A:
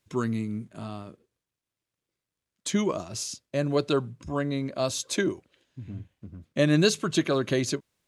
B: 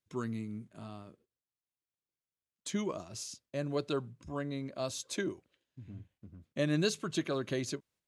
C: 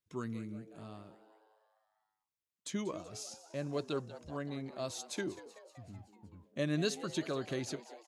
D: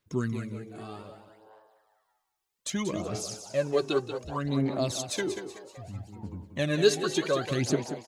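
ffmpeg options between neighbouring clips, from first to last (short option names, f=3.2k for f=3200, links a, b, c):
-af "agate=range=-6dB:threshold=-57dB:ratio=16:detection=peak,volume=-9dB"
-filter_complex "[0:a]asplit=7[a][b][c][d][e][f][g];[b]adelay=189,afreqshift=110,volume=-15.5dB[h];[c]adelay=378,afreqshift=220,volume=-19.7dB[i];[d]adelay=567,afreqshift=330,volume=-23.8dB[j];[e]adelay=756,afreqshift=440,volume=-28dB[k];[f]adelay=945,afreqshift=550,volume=-32.1dB[l];[g]adelay=1134,afreqshift=660,volume=-36.3dB[m];[a][h][i][j][k][l][m]amix=inputs=7:normalize=0,volume=-3dB"
-af "aphaser=in_gain=1:out_gain=1:delay=2.7:decay=0.64:speed=0.64:type=sinusoidal,aecho=1:1:185|370|555:0.299|0.0716|0.0172,volume=7dB"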